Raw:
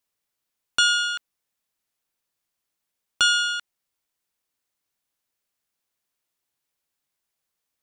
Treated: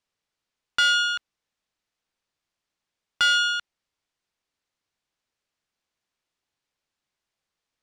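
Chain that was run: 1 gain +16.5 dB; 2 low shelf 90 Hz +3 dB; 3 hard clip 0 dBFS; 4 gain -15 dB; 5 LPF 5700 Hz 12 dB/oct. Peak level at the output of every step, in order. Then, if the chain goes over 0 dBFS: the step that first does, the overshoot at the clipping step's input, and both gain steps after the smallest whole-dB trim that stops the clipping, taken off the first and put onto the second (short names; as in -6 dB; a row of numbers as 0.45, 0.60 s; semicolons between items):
+8.0, +8.0, 0.0, -15.0, -14.0 dBFS; step 1, 8.0 dB; step 1 +8.5 dB, step 4 -7 dB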